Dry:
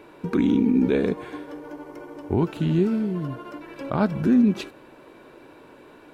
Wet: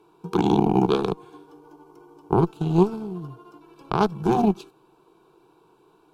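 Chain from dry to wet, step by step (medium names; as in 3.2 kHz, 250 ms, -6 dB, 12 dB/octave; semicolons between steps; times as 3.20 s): Chebyshev shaper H 3 -11 dB, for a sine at -10 dBFS; static phaser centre 380 Hz, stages 8; trim +9 dB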